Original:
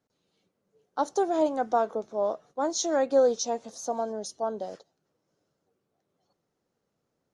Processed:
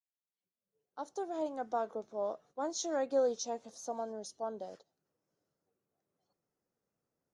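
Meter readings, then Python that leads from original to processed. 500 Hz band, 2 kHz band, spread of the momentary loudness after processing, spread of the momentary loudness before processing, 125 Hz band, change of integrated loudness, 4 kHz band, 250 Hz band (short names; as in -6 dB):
-9.0 dB, -9.5 dB, 12 LU, 11 LU, n/a, -9.5 dB, -8.5 dB, -10.0 dB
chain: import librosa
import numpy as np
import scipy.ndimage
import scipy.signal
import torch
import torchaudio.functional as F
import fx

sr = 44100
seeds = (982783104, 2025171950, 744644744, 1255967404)

y = fx.fade_in_head(x, sr, length_s=2.03)
y = fx.noise_reduce_blind(y, sr, reduce_db=11)
y = F.gain(torch.from_numpy(y), -8.5).numpy()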